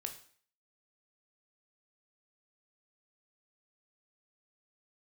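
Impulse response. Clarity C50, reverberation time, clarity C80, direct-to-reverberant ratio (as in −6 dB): 11.0 dB, 0.50 s, 14.5 dB, 4.5 dB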